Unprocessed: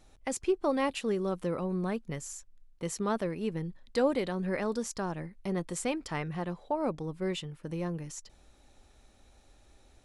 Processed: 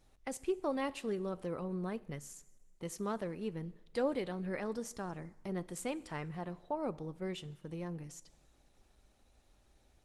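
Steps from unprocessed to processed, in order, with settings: two-slope reverb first 0.97 s, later 2.5 s, from -18 dB, DRR 16.5 dB; trim -6 dB; Opus 20 kbps 48 kHz

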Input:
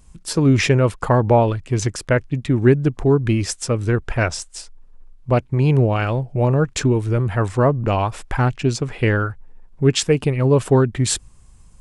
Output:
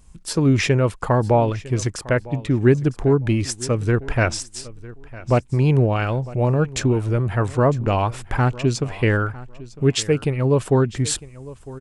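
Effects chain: gain riding within 3 dB 2 s; on a send: feedback delay 954 ms, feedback 21%, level -19 dB; on the sum: trim -2 dB

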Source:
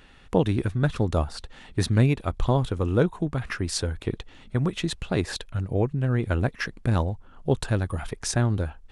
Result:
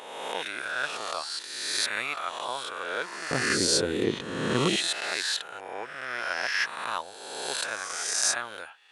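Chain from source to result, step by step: reverse spectral sustain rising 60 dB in 1.47 s; high-pass 1.3 kHz 12 dB/octave, from 3.31 s 230 Hz, from 4.76 s 1.2 kHz; trim +1 dB

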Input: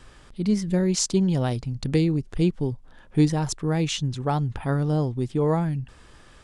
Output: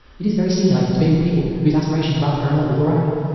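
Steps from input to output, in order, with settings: time stretch by phase-locked vocoder 0.52×; flange 0.96 Hz, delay 2.1 ms, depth 4.1 ms, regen -63%; brick-wall FIR low-pass 5.8 kHz; plate-style reverb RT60 2.6 s, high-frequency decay 0.7×, DRR -6 dB; trim +4.5 dB

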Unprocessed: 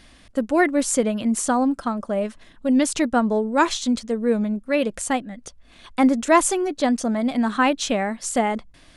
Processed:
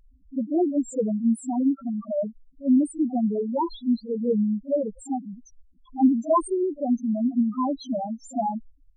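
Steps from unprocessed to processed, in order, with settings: reverse echo 43 ms -14.5 dB; loudest bins only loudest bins 2

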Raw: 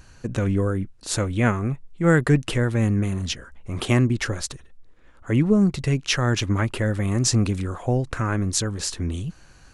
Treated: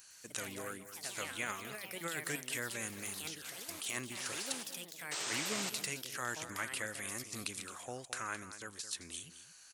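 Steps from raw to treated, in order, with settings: differentiator; compressor with a negative ratio -40 dBFS, ratio -1; painted sound noise, 5.11–5.70 s, 300–8800 Hz -38 dBFS; ever faster or slower copies 110 ms, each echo +4 st, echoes 3, each echo -6 dB; delay 217 ms -12.5 dB; trim -1.5 dB

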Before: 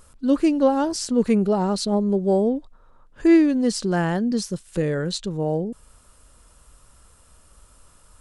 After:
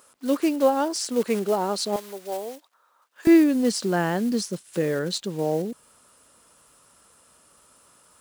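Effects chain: block-companded coder 5-bit; high-pass 350 Hz 12 dB/octave, from 1.96 s 910 Hz, from 3.27 s 200 Hz

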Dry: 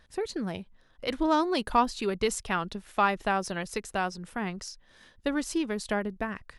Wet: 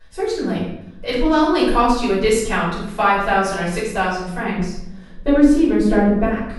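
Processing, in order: 4.53–6.23 s: tilt shelf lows +7.5 dB; simulated room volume 230 m³, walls mixed, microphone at 5 m; trim -3.5 dB

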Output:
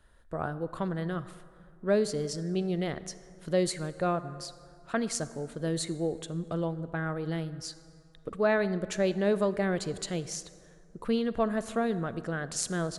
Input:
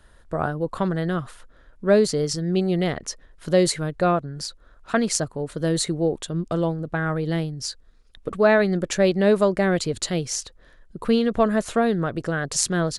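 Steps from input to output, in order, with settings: peaking EQ 5.4 kHz -2 dB; on a send: reverberation RT60 2.5 s, pre-delay 33 ms, DRR 14.5 dB; on the sum: trim -8.5 dB

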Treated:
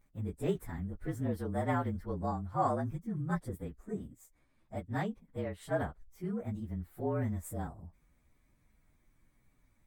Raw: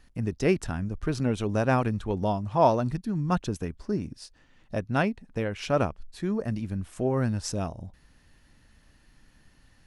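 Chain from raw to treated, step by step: frequency axis rescaled in octaves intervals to 112%; high-order bell 4 kHz -8.5 dB; trim -6.5 dB

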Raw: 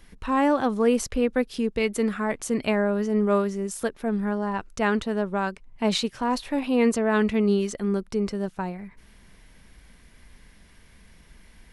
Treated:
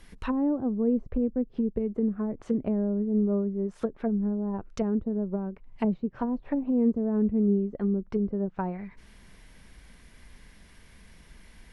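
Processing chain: low-pass that closes with the level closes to 320 Hz, closed at -22 dBFS

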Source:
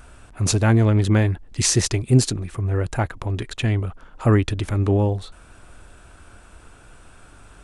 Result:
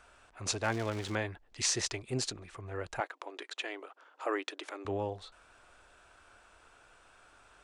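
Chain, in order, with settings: 0.62–1.14 s: crackle 540 per s -25 dBFS; 3.00–4.85 s: brick-wall FIR high-pass 270 Hz; three-band isolator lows -15 dB, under 430 Hz, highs -18 dB, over 8 kHz; trim -8 dB

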